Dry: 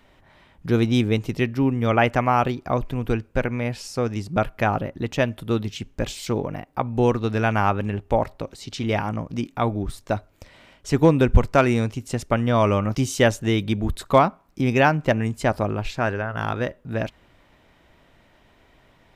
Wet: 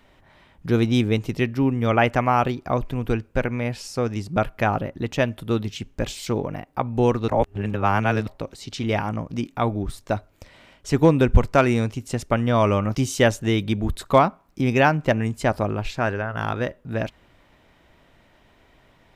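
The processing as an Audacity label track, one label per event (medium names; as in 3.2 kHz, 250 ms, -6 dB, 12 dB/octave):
7.280000	8.270000	reverse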